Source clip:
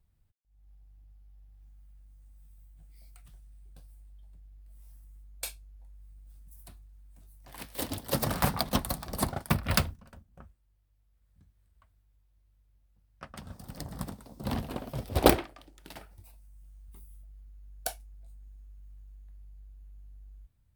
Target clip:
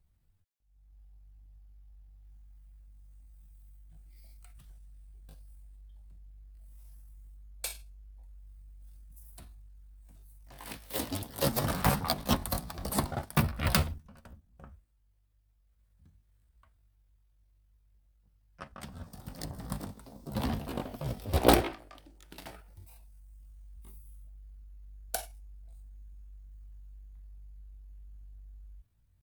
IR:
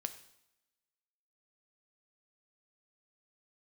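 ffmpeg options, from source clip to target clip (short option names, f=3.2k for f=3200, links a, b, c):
-af "acontrast=70,atempo=0.71,volume=-6.5dB"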